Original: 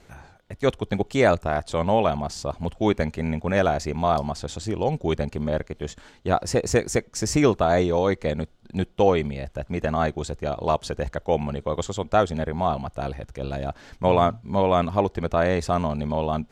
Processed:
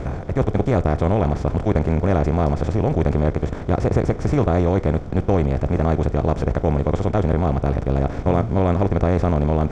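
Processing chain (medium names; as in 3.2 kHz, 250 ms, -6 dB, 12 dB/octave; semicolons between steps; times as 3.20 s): spectral levelling over time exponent 0.4; RIAA curve playback; tempo 1.7×; trim -8 dB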